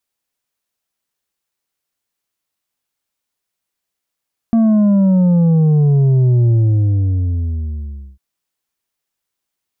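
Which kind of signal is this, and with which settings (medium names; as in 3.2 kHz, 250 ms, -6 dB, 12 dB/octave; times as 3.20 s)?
sub drop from 230 Hz, over 3.65 s, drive 5.5 dB, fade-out 1.68 s, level -9.5 dB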